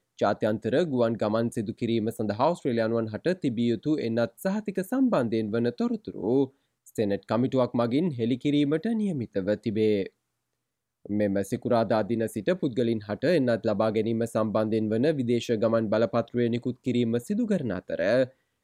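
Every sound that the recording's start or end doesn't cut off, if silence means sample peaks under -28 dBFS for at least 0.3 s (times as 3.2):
6.98–10.06
11.06–18.24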